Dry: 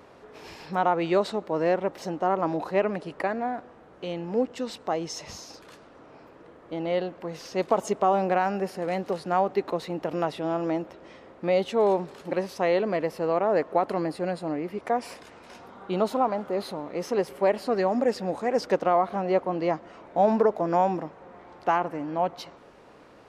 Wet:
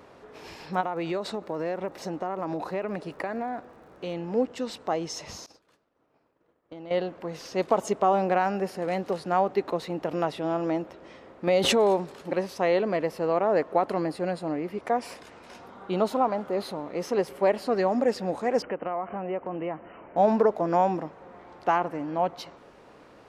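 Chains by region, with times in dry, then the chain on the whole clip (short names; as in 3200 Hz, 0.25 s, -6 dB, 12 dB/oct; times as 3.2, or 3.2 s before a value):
0.8–4.14 notch 3100 Hz, Q 16 + compressor 5:1, threshold -26 dBFS + crackle 62/s -51 dBFS
5.46–6.91 expander -38 dBFS + compressor 4:1, threshold -39 dBFS
11.47–12.12 high shelf 6100 Hz +7.5 dB + backwards sustainer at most 27 dB/s
18.62–20.17 brick-wall FIR low-pass 3100 Hz + compressor 2.5:1, threshold -30 dBFS
whole clip: dry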